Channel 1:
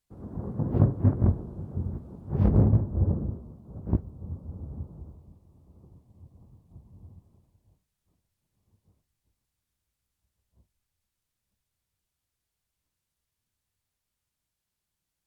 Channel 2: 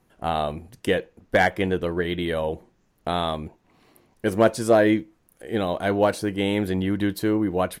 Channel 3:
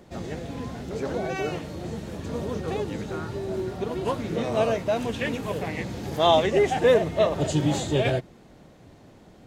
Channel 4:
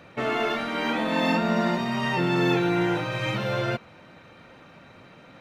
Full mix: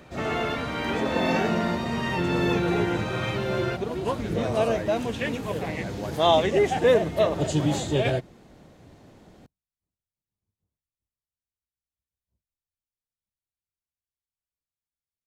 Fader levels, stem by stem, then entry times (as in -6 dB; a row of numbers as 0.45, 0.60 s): -17.0, -16.5, -0.5, -2.5 dB; 1.75, 0.00, 0.00, 0.00 s